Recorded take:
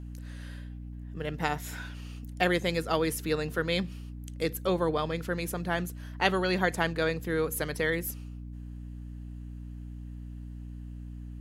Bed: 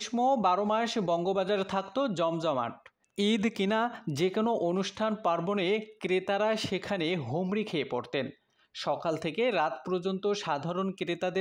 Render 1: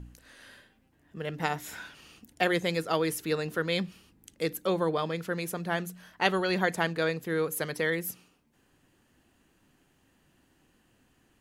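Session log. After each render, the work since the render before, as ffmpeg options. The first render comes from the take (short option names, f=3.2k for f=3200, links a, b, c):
-af "bandreject=f=60:t=h:w=4,bandreject=f=120:t=h:w=4,bandreject=f=180:t=h:w=4,bandreject=f=240:t=h:w=4,bandreject=f=300:t=h:w=4"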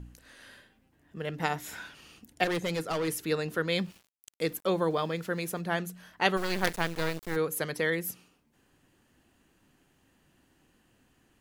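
-filter_complex "[0:a]asettb=1/sr,asplit=3[a][b][c];[a]atrim=end=2.444[d];[b]atrim=start=2.44:end=3.08,asetpts=PTS-STARTPTS,afade=t=in:d=0.004:c=qsin,afade=t=out:st=0.636:d=0.004:c=qsin,volume=27dB,asoftclip=hard,volume=-27dB[e];[c]atrim=start=3.076[f];[d][e]acrossfade=d=0.004:c1=hsin:c2=qsin[g];[g][f]acrossfade=d=0.004:c1=qsin:c2=hsin,asettb=1/sr,asplit=3[h][i][j];[h]atrim=end=3.694[k];[i]atrim=start=3.69:end=5.61,asetpts=PTS-STARTPTS,afade=t=in:d=0.004:c=qsin,afade=t=out:st=1.916:d=0.004:c=qsin,aeval=exprs='val(0)*gte(abs(val(0)),0.00282)':c=same[l];[j]atrim=start=5.606[m];[k][l]acrossfade=d=0.004:c1=hsin:c2=qsin[n];[n][m]acrossfade=d=0.004:c1=qsin:c2=hsin,asplit=3[o][p][q];[o]afade=t=out:st=6.36:d=0.02[r];[p]acrusher=bits=4:dc=4:mix=0:aa=0.000001,afade=t=in:st=6.36:d=0.02,afade=t=out:st=7.35:d=0.02[s];[q]afade=t=in:st=7.35:d=0.02[t];[r][s][t]amix=inputs=3:normalize=0"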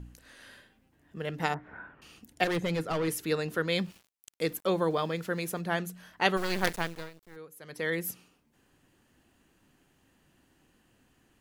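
-filter_complex "[0:a]asettb=1/sr,asplit=3[a][b][c];[a]atrim=end=1.544[d];[b]atrim=start=1.54:end=2.02,asetpts=PTS-STARTPTS,afade=t=in:d=0.004:c=qsin,afade=t=out:st=0.476:d=0.004:c=qsin,lowpass=f=1.6k:w=0.5412,lowpass=f=1.6k:w=1.3066[e];[c]atrim=start=2.016[f];[d][e]acrossfade=d=0.004:c1=hsin:c2=qsin[g];[g][f]acrossfade=d=0.004:c1=qsin:c2=hsin,asettb=1/sr,asplit=3[h][i][j];[h]atrim=end=2.554[k];[i]atrim=start=2.55:end=3.09,asetpts=PTS-STARTPTS,afade=t=in:d=0.004:c=qsin,afade=t=out:st=0.536:d=0.004:c=qsin,bass=f=250:g=4,treble=f=4k:g=-6[l];[j]atrim=start=3.086[m];[k][l]acrossfade=d=0.004:c1=hsin:c2=qsin[n];[n][m]acrossfade=d=0.004:c1=qsin:c2=hsin,asplit=3[o][p][q];[o]atrim=end=7.1,asetpts=PTS-STARTPTS,afade=t=out:st=6.73:d=0.37:silence=0.125893[r];[p]atrim=start=7.1:end=7.62,asetpts=PTS-STARTPTS,volume=-18dB[s];[q]atrim=start=7.62,asetpts=PTS-STARTPTS,afade=t=in:d=0.37:silence=0.125893[t];[r][s][t]concat=n=3:v=0:a=1"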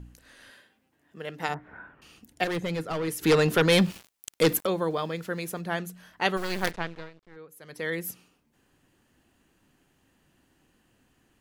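-filter_complex "[0:a]asettb=1/sr,asplit=3[a][b][c];[a]atrim=end=0.504[d];[b]atrim=start=0.5:end=1.49,asetpts=PTS-STARTPTS,afade=t=in:d=0.004:c=qsin,afade=t=out:st=0.986:d=0.004:c=qsin,highpass=f=290:p=1[e];[c]atrim=start=1.486[f];[d][e]acrossfade=d=0.004:c1=hsin:c2=qsin[g];[g][f]acrossfade=d=0.004:c1=qsin:c2=hsin,asplit=3[h][i][j];[h]afade=t=out:st=3.21:d=0.02[k];[i]aeval=exprs='0.188*sin(PI/2*2.51*val(0)/0.188)':c=same,afade=t=in:st=3.21:d=0.02,afade=t=out:st=4.65:d=0.02[l];[j]afade=t=in:st=4.65:d=0.02[m];[k][l][m]amix=inputs=3:normalize=0,asettb=1/sr,asplit=3[n][o][p];[n]atrim=end=6.714[q];[o]atrim=start=6.71:end=7.49,asetpts=PTS-STARTPTS,afade=t=in:d=0.004:c=qsin,afade=t=out:st=0.776:d=0.004:c=qsin,lowpass=3.8k[r];[p]atrim=start=7.486[s];[q][r]acrossfade=d=0.004:c1=hsin:c2=qsin[t];[t][s]acrossfade=d=0.004:c1=qsin:c2=hsin"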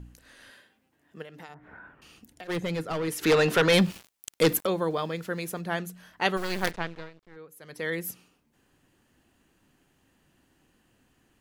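-filter_complex "[0:a]asplit=3[a][b][c];[a]afade=t=out:st=1.22:d=0.02[d];[b]acompressor=threshold=-43dB:ratio=4:attack=3.2:release=140:knee=1:detection=peak,afade=t=in:st=1.22:d=0.02,afade=t=out:st=2.48:d=0.02[e];[c]afade=t=in:st=2.48:d=0.02[f];[d][e][f]amix=inputs=3:normalize=0,asettb=1/sr,asplit=3[g][h][i];[g]atrim=end=3.124[j];[h]atrim=start=3.12:end=3.74,asetpts=PTS-STARTPTS,afade=t=in:d=0.004:c=qsin,afade=t=out:st=0.616:d=0.004:c=qsin,asplit=2[k][l];[l]highpass=f=720:p=1,volume=13dB,asoftclip=type=tanh:threshold=-14.5dB[m];[k][m]amix=inputs=2:normalize=0,lowpass=f=3.9k:p=1,volume=-6dB[n];[i]atrim=start=3.736[o];[j][n]acrossfade=d=0.004:c1=hsin:c2=qsin[p];[p][o]acrossfade=d=0.004:c1=qsin:c2=hsin"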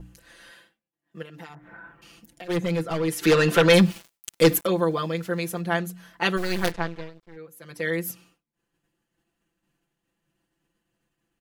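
-af "agate=range=-33dB:threshold=-56dB:ratio=3:detection=peak,aecho=1:1:5.9:0.98"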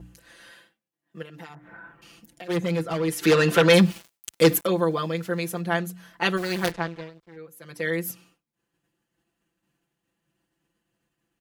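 -af "highpass=45"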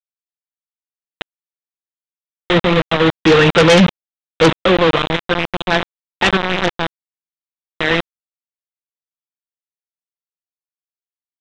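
-af "aresample=8000,acrusher=bits=3:mix=0:aa=0.000001,aresample=44100,aeval=exprs='0.531*sin(PI/2*2.24*val(0)/0.531)':c=same"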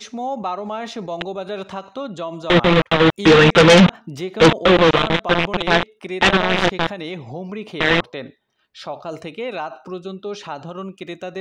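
-filter_complex "[1:a]volume=0.5dB[a];[0:a][a]amix=inputs=2:normalize=0"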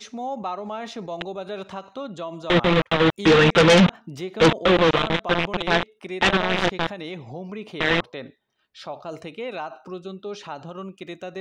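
-af "volume=-4.5dB"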